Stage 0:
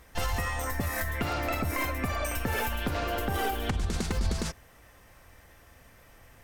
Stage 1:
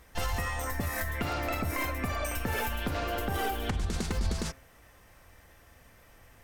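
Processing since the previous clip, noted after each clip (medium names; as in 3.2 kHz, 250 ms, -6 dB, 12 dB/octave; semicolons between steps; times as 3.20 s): de-hum 133.6 Hz, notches 20; trim -1.5 dB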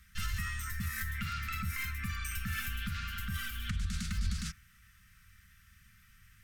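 Chebyshev band-stop 210–1300 Hz, order 4; trim -2.5 dB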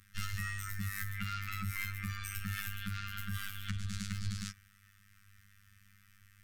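robot voice 99.5 Hz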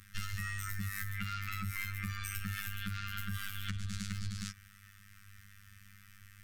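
compression 5:1, threshold -40 dBFS, peak gain reduction 9.5 dB; trim +6 dB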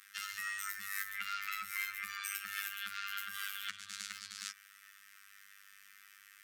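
high-pass 870 Hz 12 dB/octave; trim +2 dB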